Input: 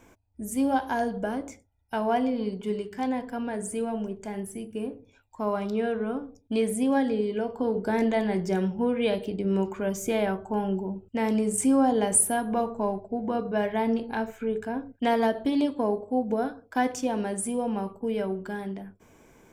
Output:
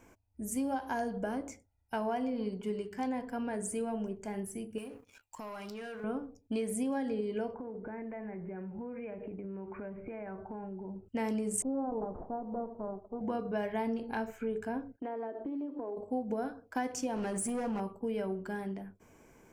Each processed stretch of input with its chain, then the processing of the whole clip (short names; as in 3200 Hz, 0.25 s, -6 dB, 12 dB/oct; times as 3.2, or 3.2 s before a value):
4.78–6.04 tilt shelf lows -8 dB, about 1200 Hz + sample leveller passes 2 + compressor 12:1, threshold -36 dBFS
7.54–11.06 steep low-pass 2500 Hz 72 dB/oct + compressor 12:1, threshold -34 dBFS
11.62–13.21 minimum comb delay 0.42 ms + steep low-pass 930 Hz + low shelf 400 Hz -9 dB
14.96–15.97 LPF 1400 Hz + resonant low shelf 220 Hz -11 dB, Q 3 + compressor, threshold -32 dBFS
17.16–17.8 LPF 9700 Hz + transient shaper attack +3 dB, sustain +8 dB + hard clip -26.5 dBFS
whole clip: bell 3600 Hz -9 dB 0.22 oct; compressor, threshold -26 dBFS; dynamic EQ 6300 Hz, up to +3 dB, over -50 dBFS, Q 1.1; gain -4 dB